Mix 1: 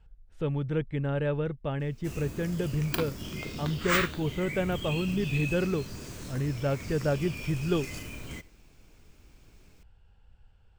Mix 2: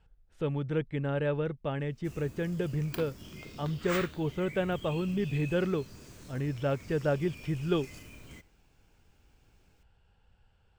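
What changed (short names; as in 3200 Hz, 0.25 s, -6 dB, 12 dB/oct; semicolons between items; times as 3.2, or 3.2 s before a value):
speech: add low shelf 85 Hz -10.5 dB; background -9.0 dB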